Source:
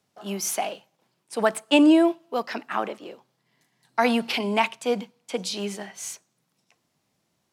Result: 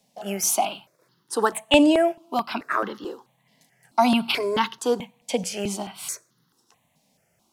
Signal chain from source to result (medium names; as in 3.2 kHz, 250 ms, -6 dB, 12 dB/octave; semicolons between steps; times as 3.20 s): in parallel at -1 dB: compression, threshold -32 dBFS, peak gain reduction 18 dB; on the sum: stepped phaser 4.6 Hz 360–2400 Hz; trim +3.5 dB